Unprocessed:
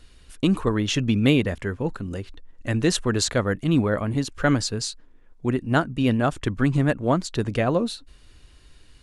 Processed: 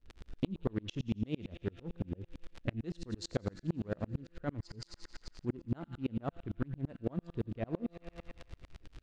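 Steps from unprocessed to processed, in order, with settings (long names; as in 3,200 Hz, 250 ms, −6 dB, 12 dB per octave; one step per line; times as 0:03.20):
adaptive Wiener filter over 41 samples
in parallel at +2 dB: brickwall limiter −15 dBFS, peak gain reduction 9 dB
on the sum: surface crackle 66 per second −31 dBFS
tuned comb filter 170 Hz, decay 1.4 s, mix 60%
on a send: delay with a high-pass on its return 87 ms, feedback 75%, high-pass 2,000 Hz, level −12.5 dB
on the sum: dynamic equaliser 1,800 Hz, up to −6 dB, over −44 dBFS, Q 0.78
downward compressor 3 to 1, threshold −41 dBFS, peak gain reduction 17 dB
low-pass filter 4,300 Hz 12 dB per octave
tremolo with a ramp in dB swelling 8.9 Hz, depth 37 dB
level +10.5 dB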